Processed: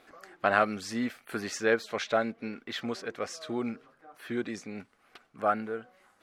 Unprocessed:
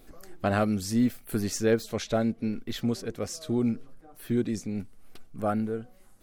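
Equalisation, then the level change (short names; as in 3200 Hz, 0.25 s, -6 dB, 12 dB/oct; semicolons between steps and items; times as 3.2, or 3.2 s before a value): band-pass 1500 Hz, Q 0.89; +7.0 dB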